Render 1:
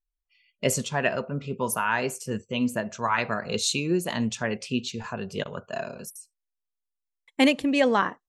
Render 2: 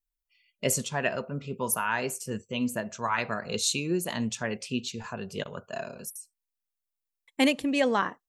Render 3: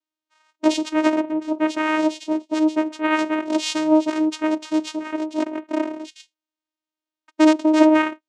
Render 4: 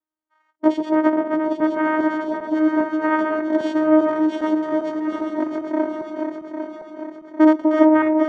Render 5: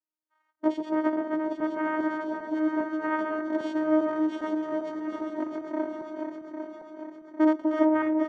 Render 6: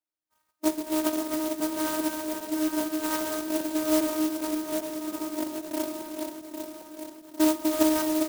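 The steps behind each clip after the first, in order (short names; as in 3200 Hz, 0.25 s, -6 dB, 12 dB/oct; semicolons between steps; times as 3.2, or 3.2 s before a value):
high shelf 8700 Hz +9.5 dB; gain -3.5 dB
in parallel at -4.5 dB: overloaded stage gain 26 dB; on the sum: vocoder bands 4, saw 311 Hz; gain +7.5 dB
regenerating reverse delay 0.401 s, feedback 70%, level -5 dB; polynomial smoothing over 41 samples; gain +1 dB
feedback echo 0.263 s, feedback 53%, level -16 dB; gain -8.5 dB
on a send at -11.5 dB: reverb RT60 1.5 s, pre-delay 41 ms; on the sum: clock jitter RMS 0.11 ms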